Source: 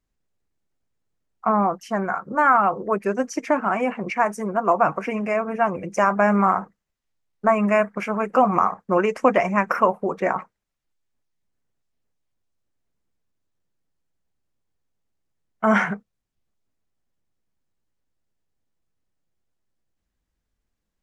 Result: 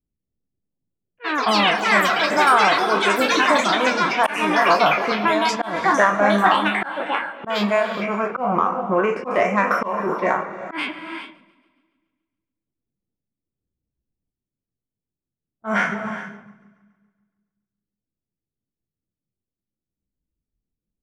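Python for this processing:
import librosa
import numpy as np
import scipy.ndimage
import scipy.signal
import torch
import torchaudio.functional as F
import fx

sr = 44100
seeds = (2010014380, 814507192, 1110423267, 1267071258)

p1 = fx.spec_trails(x, sr, decay_s=0.98)
p2 = fx.echo_pitch(p1, sr, ms=268, semitones=7, count=3, db_per_echo=-3.0)
p3 = fx.env_lowpass(p2, sr, base_hz=310.0, full_db=-14.0)
p4 = 10.0 ** (-11.5 / 20.0) * np.tanh(p3 / 10.0 ** (-11.5 / 20.0))
p5 = p3 + (p4 * 10.0 ** (-9.0 / 20.0))
p6 = fx.lowpass(p5, sr, hz=2300.0, slope=6, at=(8.31, 9.31))
p7 = p6 + fx.echo_split(p6, sr, split_hz=300.0, low_ms=183, high_ms=140, feedback_pct=52, wet_db=-14.5, dry=0)
p8 = fx.dereverb_blind(p7, sr, rt60_s=0.78)
p9 = fx.low_shelf(p8, sr, hz=80.0, db=-8.5)
p10 = fx.rev_gated(p9, sr, seeds[0], gate_ms=440, shape='rising', drr_db=11.5)
p11 = fx.auto_swell(p10, sr, attack_ms=178.0)
y = p11 * 10.0 ** (-2.0 / 20.0)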